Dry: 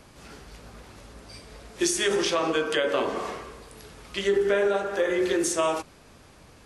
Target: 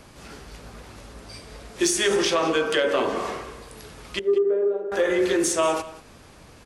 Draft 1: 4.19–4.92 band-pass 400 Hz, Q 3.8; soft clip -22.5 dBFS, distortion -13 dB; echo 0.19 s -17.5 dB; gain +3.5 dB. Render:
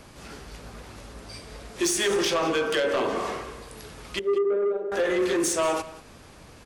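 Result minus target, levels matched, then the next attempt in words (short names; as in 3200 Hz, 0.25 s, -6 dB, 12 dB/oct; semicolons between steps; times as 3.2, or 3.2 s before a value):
soft clip: distortion +12 dB
4.19–4.92 band-pass 400 Hz, Q 3.8; soft clip -13.5 dBFS, distortion -26 dB; echo 0.19 s -17.5 dB; gain +3.5 dB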